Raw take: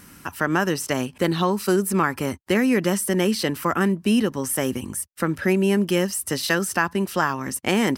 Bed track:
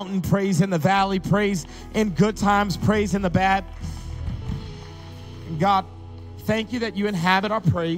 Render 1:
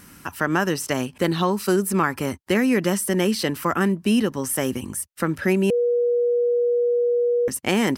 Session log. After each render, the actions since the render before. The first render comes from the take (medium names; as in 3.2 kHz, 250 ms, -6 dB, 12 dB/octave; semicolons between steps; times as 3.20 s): 5.70–7.48 s: bleep 481 Hz -17 dBFS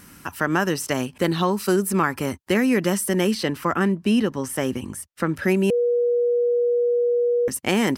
3.34–5.36 s: treble shelf 7.8 kHz -10 dB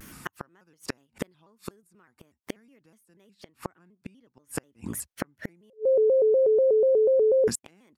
inverted gate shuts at -16 dBFS, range -39 dB; vibrato with a chosen wave square 4.1 Hz, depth 160 cents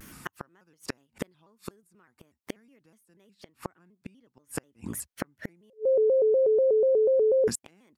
trim -1.5 dB